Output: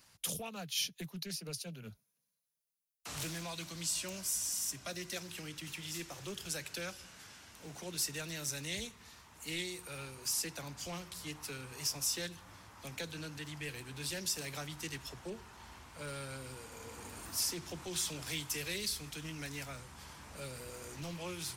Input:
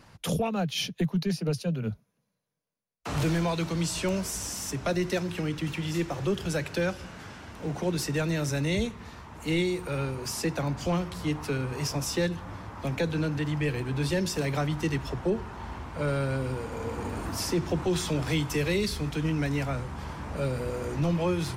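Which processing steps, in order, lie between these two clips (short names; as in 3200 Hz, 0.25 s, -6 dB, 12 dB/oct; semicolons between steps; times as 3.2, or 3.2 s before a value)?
pre-emphasis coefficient 0.9; 3.27–5.16 notch comb 440 Hz; Doppler distortion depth 0.14 ms; gain +2 dB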